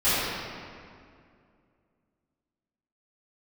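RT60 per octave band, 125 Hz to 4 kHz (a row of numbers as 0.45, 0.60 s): 2.7, 2.8, 2.4, 2.2, 1.9, 1.5 s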